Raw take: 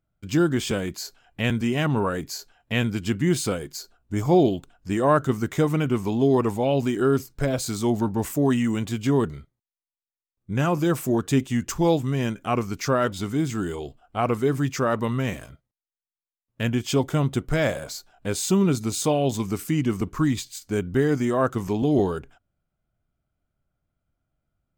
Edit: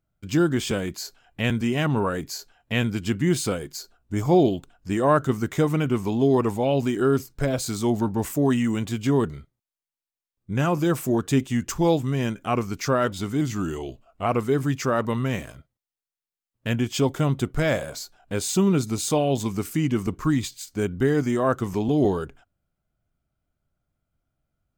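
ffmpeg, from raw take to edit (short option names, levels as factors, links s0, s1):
-filter_complex "[0:a]asplit=3[s0][s1][s2];[s0]atrim=end=13.414[s3];[s1]atrim=start=13.41:end=14.2,asetpts=PTS-STARTPTS,asetrate=41013,aresample=44100,atrim=end_sample=37461,asetpts=PTS-STARTPTS[s4];[s2]atrim=start=14.196[s5];[s3][s4]acrossfade=d=0.004:c1=hsin:c2=hsin[s6];[s6][s5]acrossfade=d=0.004:c1=hsin:c2=hsin"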